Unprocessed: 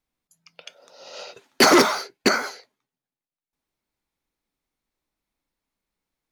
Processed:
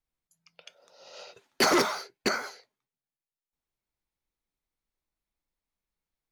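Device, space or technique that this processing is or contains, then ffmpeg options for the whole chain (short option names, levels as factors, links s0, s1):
low shelf boost with a cut just above: -af "lowshelf=f=92:g=7.5,equalizer=f=260:t=o:w=0.55:g=-4.5,volume=0.398"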